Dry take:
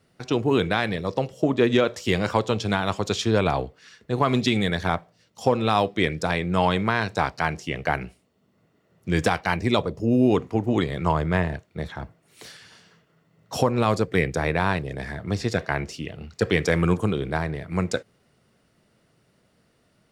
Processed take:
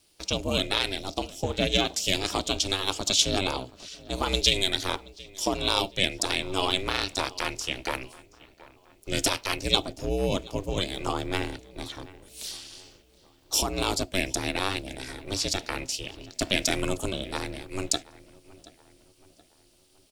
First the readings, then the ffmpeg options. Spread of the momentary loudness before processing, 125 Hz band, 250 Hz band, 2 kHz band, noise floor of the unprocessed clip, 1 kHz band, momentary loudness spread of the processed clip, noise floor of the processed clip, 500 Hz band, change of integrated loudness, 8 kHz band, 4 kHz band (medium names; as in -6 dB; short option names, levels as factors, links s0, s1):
11 LU, -10.0 dB, -9.0 dB, -4.5 dB, -65 dBFS, -7.0 dB, 13 LU, -61 dBFS, -7.5 dB, -3.5 dB, +10.5 dB, +7.0 dB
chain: -filter_complex "[0:a]asplit=2[s0][s1];[s1]adelay=726,lowpass=f=2400:p=1,volume=0.1,asplit=2[s2][s3];[s3]adelay=726,lowpass=f=2400:p=1,volume=0.48,asplit=2[s4][s5];[s5]adelay=726,lowpass=f=2400:p=1,volume=0.48,asplit=2[s6][s7];[s7]adelay=726,lowpass=f=2400:p=1,volume=0.48[s8];[s0][s2][s4][s6][s8]amix=inputs=5:normalize=0,aeval=exprs='val(0)*sin(2*PI*190*n/s)':c=same,aexciter=amount=6.6:drive=3.7:freq=2600,volume=0.596"